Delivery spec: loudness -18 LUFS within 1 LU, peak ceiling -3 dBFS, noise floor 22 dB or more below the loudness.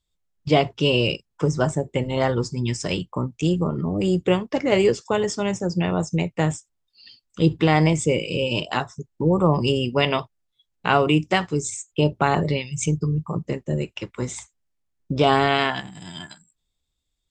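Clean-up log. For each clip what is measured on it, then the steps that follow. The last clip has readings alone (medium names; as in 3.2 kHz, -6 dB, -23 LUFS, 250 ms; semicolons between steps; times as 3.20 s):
loudness -22.5 LUFS; peak level -3.5 dBFS; loudness target -18.0 LUFS
-> trim +4.5 dB; peak limiter -3 dBFS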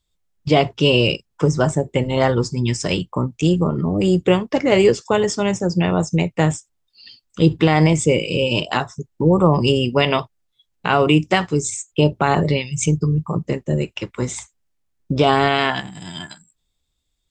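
loudness -18.5 LUFS; peak level -3.0 dBFS; noise floor -72 dBFS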